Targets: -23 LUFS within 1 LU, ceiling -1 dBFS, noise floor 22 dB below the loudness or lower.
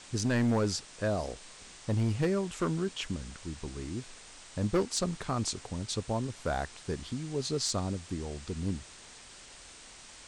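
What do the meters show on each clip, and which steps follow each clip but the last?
clipped 0.9%; flat tops at -22.5 dBFS; noise floor -51 dBFS; noise floor target -56 dBFS; loudness -33.5 LUFS; peak -22.5 dBFS; loudness target -23.0 LUFS
-> clip repair -22.5 dBFS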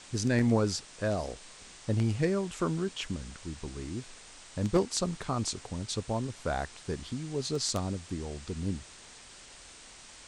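clipped 0.0%; noise floor -51 dBFS; noise floor target -55 dBFS
-> denoiser 6 dB, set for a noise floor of -51 dBFS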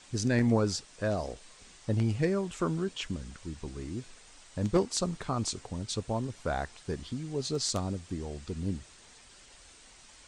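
noise floor -55 dBFS; loudness -32.5 LUFS; peak -13.5 dBFS; loudness target -23.0 LUFS
-> gain +9.5 dB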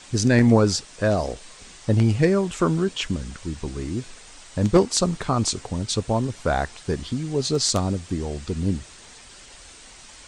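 loudness -23.0 LUFS; peak -4.0 dBFS; noise floor -46 dBFS

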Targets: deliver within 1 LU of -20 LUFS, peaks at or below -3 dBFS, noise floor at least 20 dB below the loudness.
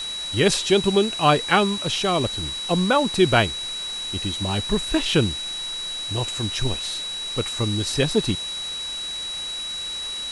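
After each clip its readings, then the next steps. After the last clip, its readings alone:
steady tone 3900 Hz; tone level -28 dBFS; noise floor -31 dBFS; noise floor target -43 dBFS; loudness -22.5 LUFS; peak -2.5 dBFS; loudness target -20.0 LUFS
-> notch 3900 Hz, Q 30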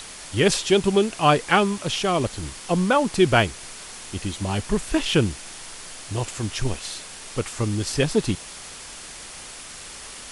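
steady tone none; noise floor -40 dBFS; noise floor target -43 dBFS
-> denoiser 6 dB, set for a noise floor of -40 dBFS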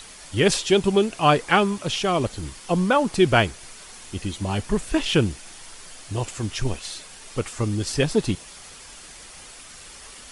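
noise floor -44 dBFS; loudness -23.0 LUFS; peak -2.5 dBFS; loudness target -20.0 LUFS
-> gain +3 dB; limiter -3 dBFS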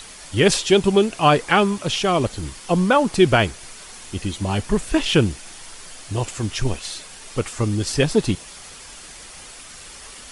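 loudness -20.0 LUFS; peak -3.0 dBFS; noise floor -41 dBFS

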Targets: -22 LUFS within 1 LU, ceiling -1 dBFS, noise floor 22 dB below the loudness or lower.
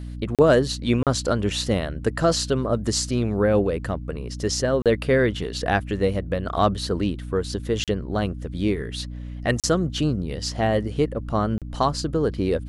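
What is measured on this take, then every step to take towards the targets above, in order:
dropouts 6; longest dropout 37 ms; hum 60 Hz; harmonics up to 300 Hz; hum level -31 dBFS; loudness -23.5 LUFS; peak -5.5 dBFS; loudness target -22.0 LUFS
-> interpolate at 0.35/1.03/4.82/7.84/9.6/11.58, 37 ms; notches 60/120/180/240/300 Hz; gain +1.5 dB

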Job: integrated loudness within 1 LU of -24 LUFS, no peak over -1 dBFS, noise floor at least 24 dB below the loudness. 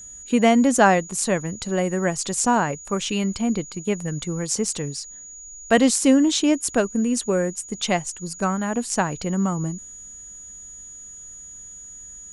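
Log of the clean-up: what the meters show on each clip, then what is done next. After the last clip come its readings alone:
steady tone 6800 Hz; tone level -38 dBFS; loudness -22.0 LUFS; peak -3.0 dBFS; loudness target -24.0 LUFS
-> notch 6800 Hz, Q 30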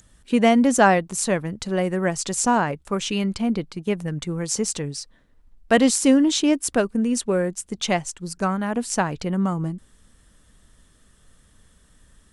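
steady tone none; loudness -22.0 LUFS; peak -3.0 dBFS; loudness target -24.0 LUFS
-> gain -2 dB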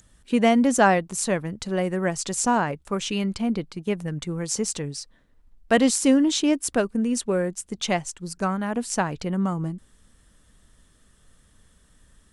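loudness -24.0 LUFS; peak -5.0 dBFS; noise floor -60 dBFS

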